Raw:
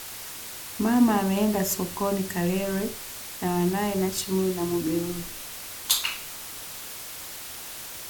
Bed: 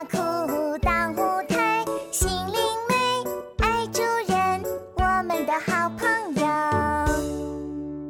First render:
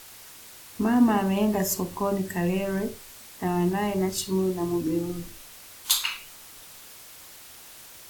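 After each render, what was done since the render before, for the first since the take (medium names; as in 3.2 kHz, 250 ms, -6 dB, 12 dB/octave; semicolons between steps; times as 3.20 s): noise print and reduce 8 dB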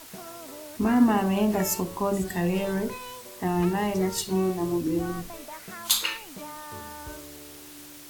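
add bed -18 dB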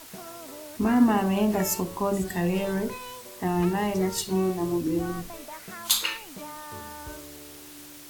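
no audible change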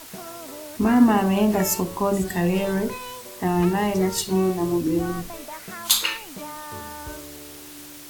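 trim +4 dB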